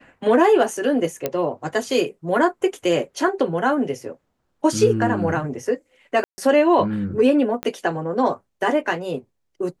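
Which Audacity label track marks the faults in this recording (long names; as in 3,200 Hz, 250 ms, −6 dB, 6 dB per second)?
1.260000	1.260000	click −8 dBFS
6.240000	6.380000	drop-out 140 ms
7.630000	7.630000	click −12 dBFS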